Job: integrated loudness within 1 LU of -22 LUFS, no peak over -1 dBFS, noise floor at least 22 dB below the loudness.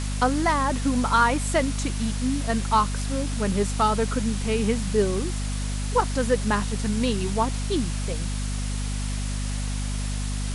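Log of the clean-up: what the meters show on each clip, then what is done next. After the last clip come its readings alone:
hum 50 Hz; harmonics up to 250 Hz; hum level -25 dBFS; noise floor -28 dBFS; noise floor target -47 dBFS; loudness -25.0 LUFS; peak -8.0 dBFS; loudness target -22.0 LUFS
-> de-hum 50 Hz, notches 5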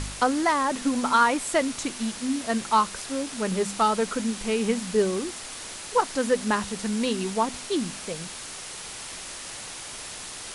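hum none; noise floor -39 dBFS; noise floor target -49 dBFS
-> denoiser 10 dB, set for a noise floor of -39 dBFS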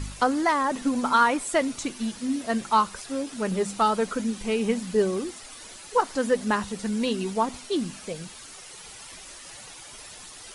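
noise floor -44 dBFS; noise floor target -48 dBFS
-> denoiser 6 dB, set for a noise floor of -44 dBFS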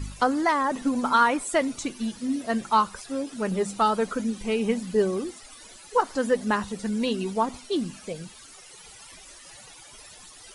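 noise floor -48 dBFS; loudness -26.0 LUFS; peak -8.0 dBFS; loudness target -22.0 LUFS
-> gain +4 dB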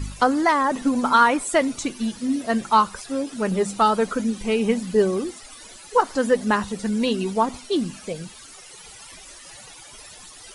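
loudness -22.0 LUFS; peak -4.0 dBFS; noise floor -44 dBFS

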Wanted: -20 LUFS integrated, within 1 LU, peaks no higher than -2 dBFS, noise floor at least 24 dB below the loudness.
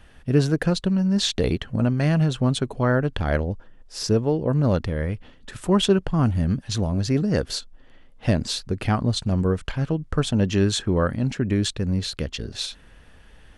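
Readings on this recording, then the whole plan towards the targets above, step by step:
loudness -23.5 LUFS; peak -6.0 dBFS; loudness target -20.0 LUFS
-> gain +3.5 dB

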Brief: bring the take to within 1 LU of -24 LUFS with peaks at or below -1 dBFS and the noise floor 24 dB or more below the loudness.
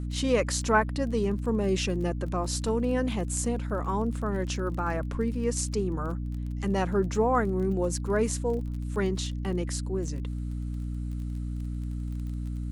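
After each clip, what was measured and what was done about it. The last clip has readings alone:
ticks 22/s; hum 60 Hz; harmonics up to 300 Hz; hum level -30 dBFS; loudness -29.0 LUFS; peak -9.0 dBFS; loudness target -24.0 LUFS
-> de-click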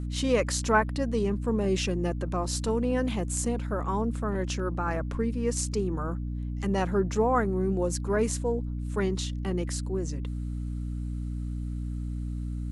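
ticks 0/s; hum 60 Hz; harmonics up to 300 Hz; hum level -30 dBFS
-> notches 60/120/180/240/300 Hz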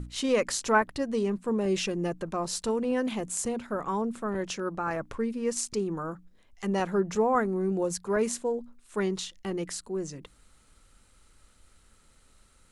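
hum none; loudness -30.0 LUFS; peak -10.5 dBFS; loudness target -24.0 LUFS
-> gain +6 dB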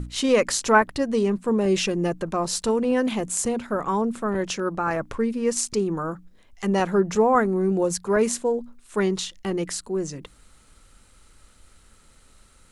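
loudness -24.0 LUFS; peak -4.5 dBFS; noise floor -55 dBFS

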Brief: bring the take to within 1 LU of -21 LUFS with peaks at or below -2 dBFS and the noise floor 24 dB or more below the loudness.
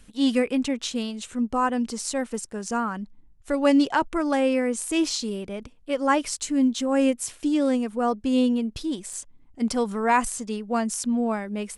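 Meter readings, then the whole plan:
dropouts 1; longest dropout 3.3 ms; loudness -25.0 LUFS; peak -7.5 dBFS; loudness target -21.0 LUFS
-> interpolate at 9.13, 3.3 ms; gain +4 dB

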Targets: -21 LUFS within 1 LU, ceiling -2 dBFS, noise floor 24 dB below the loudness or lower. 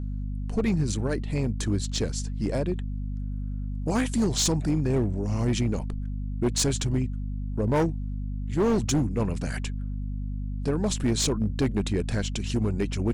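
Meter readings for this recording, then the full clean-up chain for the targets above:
clipped 1.8%; flat tops at -18.5 dBFS; hum 50 Hz; harmonics up to 250 Hz; hum level -29 dBFS; loudness -27.5 LUFS; peak -18.5 dBFS; loudness target -21.0 LUFS
-> clip repair -18.5 dBFS; notches 50/100/150/200/250 Hz; gain +6.5 dB

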